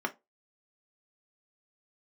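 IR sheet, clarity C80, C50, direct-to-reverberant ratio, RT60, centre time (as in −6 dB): 30.0 dB, 20.0 dB, 2.5 dB, 0.20 s, 5 ms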